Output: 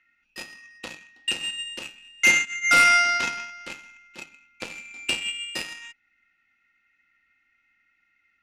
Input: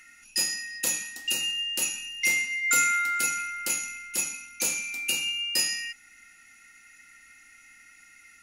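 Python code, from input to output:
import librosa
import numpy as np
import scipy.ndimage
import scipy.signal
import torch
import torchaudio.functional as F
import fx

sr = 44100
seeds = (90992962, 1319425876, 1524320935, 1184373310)

y = scipy.signal.sosfilt(scipy.signal.butter(4, 3600.0, 'lowpass', fs=sr, output='sos'), x)
y = fx.cheby_harmonics(y, sr, harmonics=(5, 7), levels_db=(-45, -17), full_scale_db=-10.0)
y = fx.fold_sine(y, sr, drive_db=9, ceiling_db=-9.5)
y = F.gain(torch.from_numpy(y), 1.5).numpy()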